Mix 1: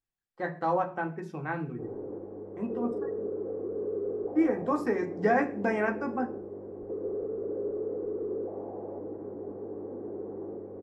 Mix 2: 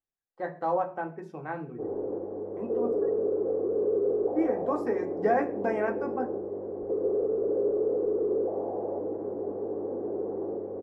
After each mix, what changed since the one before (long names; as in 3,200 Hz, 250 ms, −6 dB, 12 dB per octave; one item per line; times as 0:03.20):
speech −7.0 dB
master: add parametric band 600 Hz +8.5 dB 1.8 octaves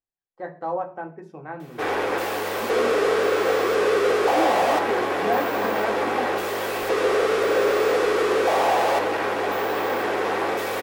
background: remove transistor ladder low-pass 520 Hz, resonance 30%